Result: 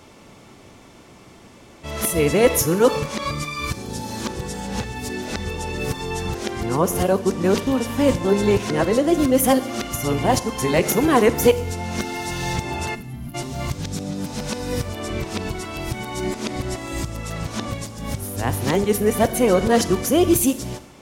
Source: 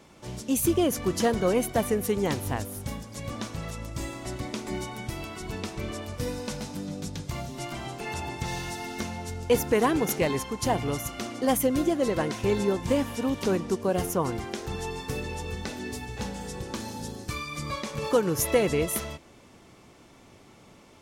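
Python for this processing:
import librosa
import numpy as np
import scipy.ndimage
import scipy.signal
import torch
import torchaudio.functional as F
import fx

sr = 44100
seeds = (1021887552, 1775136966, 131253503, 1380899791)

y = np.flip(x).copy()
y = fx.spec_box(y, sr, start_s=12.95, length_s=0.39, low_hz=280.0, high_hz=10000.0, gain_db=-20)
y = fx.rev_schroeder(y, sr, rt60_s=0.78, comb_ms=31, drr_db=13.5)
y = y * librosa.db_to_amplitude(7.0)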